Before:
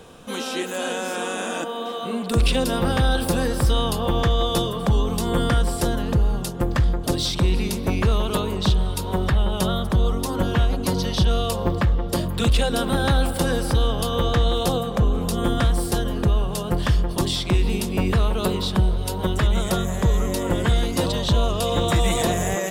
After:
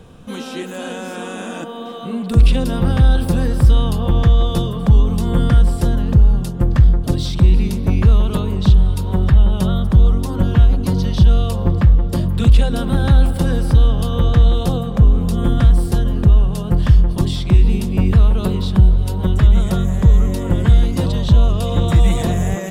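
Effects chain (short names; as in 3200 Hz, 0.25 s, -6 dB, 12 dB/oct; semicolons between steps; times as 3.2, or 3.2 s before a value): tone controls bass +12 dB, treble -3 dB; gain -2.5 dB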